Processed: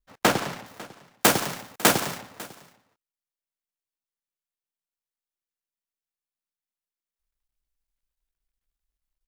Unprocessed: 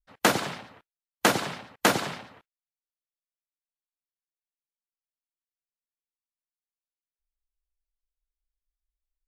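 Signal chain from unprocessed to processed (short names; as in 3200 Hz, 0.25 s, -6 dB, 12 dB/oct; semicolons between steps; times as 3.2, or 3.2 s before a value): switching dead time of 0.13 ms; high shelf 6000 Hz -2.5 dB, from 0.66 s +9 dB, from 2.18 s +3 dB; echo 0.549 s -20.5 dB; gain +3 dB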